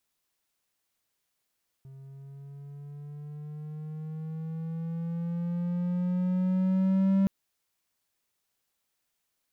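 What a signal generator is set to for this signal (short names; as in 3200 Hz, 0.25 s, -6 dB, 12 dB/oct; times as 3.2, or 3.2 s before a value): gliding synth tone triangle, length 5.42 s, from 134 Hz, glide +6.5 st, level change +24.5 dB, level -18 dB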